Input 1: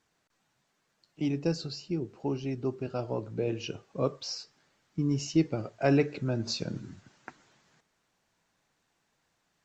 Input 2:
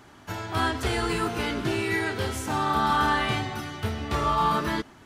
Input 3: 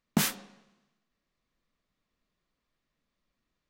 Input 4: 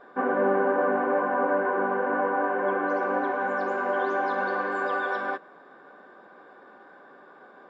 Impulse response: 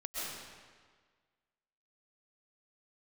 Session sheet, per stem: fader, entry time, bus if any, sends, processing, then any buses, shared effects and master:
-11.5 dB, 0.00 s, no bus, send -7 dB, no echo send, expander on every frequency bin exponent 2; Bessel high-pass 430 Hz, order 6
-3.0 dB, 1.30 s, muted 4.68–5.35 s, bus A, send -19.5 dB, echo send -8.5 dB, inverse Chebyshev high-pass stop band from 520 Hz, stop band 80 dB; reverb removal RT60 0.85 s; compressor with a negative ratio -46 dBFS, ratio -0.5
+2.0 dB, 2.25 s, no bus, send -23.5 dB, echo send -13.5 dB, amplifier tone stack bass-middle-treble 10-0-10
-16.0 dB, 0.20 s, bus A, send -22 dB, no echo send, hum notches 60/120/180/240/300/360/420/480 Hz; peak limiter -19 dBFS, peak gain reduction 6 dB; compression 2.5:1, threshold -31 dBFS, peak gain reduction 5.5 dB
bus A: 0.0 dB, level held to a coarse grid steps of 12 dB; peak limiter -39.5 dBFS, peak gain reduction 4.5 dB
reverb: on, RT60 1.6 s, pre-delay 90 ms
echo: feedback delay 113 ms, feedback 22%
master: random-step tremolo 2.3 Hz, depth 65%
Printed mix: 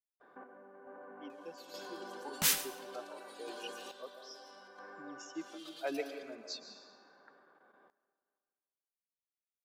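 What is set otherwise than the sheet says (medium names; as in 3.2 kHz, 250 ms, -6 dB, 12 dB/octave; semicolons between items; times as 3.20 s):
stem 1 -11.5 dB -> -5.5 dB; stem 4 -16.0 dB -> -8.0 dB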